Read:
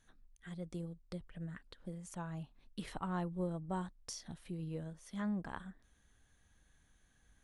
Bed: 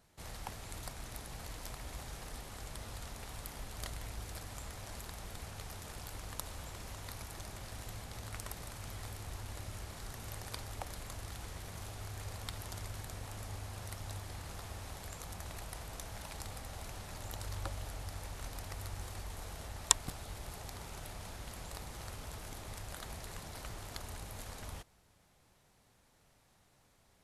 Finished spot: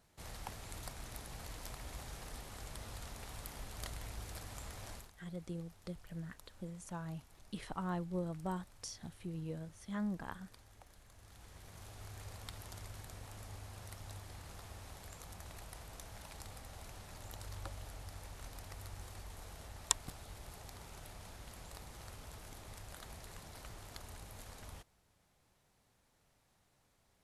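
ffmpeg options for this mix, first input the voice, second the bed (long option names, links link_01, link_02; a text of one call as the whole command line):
ffmpeg -i stem1.wav -i stem2.wav -filter_complex "[0:a]adelay=4750,volume=-0.5dB[link_01];[1:a]volume=10dB,afade=type=out:start_time=4.9:duration=0.21:silence=0.16788,afade=type=in:start_time=11.12:duration=0.98:silence=0.251189[link_02];[link_01][link_02]amix=inputs=2:normalize=0" out.wav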